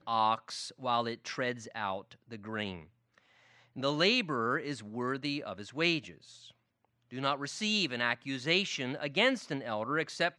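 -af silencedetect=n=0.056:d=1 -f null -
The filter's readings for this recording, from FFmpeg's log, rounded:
silence_start: 2.68
silence_end: 3.84 | silence_duration: 1.16
silence_start: 5.98
silence_end: 7.24 | silence_duration: 1.26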